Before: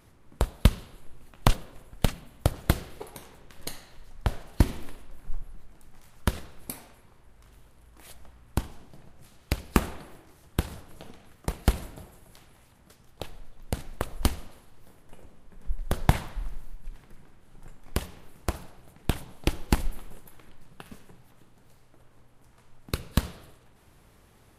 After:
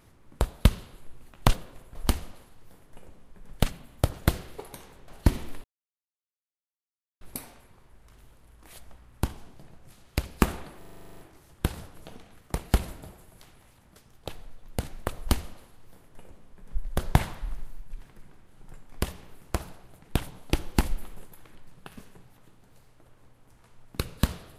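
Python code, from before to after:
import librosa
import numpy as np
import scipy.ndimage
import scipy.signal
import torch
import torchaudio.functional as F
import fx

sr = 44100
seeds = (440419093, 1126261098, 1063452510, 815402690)

y = fx.edit(x, sr, fx.cut(start_s=3.5, length_s=0.92),
    fx.silence(start_s=4.98, length_s=1.57),
    fx.stutter(start_s=10.12, slice_s=0.04, count=11),
    fx.duplicate(start_s=14.11, length_s=1.58, to_s=1.95), tone=tone)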